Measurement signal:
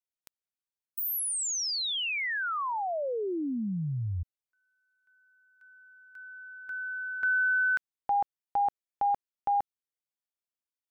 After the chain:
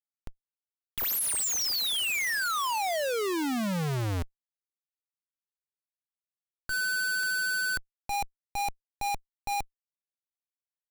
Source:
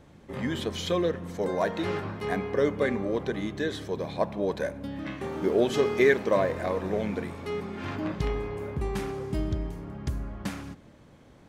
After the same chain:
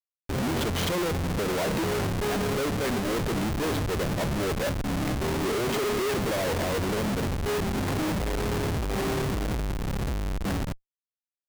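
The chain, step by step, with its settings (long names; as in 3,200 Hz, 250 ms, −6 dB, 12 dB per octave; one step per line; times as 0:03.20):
pitch vibrato 13 Hz 6.3 cents
comparator with hysteresis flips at −35.5 dBFS
brickwall limiter −29.5 dBFS
level +4 dB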